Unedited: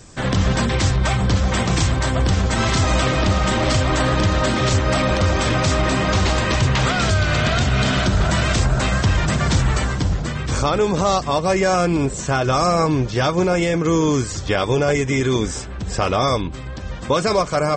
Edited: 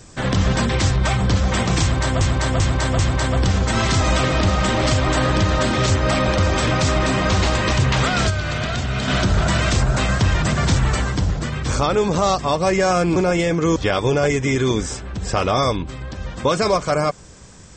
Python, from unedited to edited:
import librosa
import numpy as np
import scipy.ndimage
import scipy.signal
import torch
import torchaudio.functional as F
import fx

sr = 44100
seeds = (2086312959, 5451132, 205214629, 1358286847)

y = fx.edit(x, sr, fx.repeat(start_s=1.82, length_s=0.39, count=4),
    fx.clip_gain(start_s=7.13, length_s=0.78, db=-5.0),
    fx.cut(start_s=11.99, length_s=1.4),
    fx.cut(start_s=13.99, length_s=0.42), tone=tone)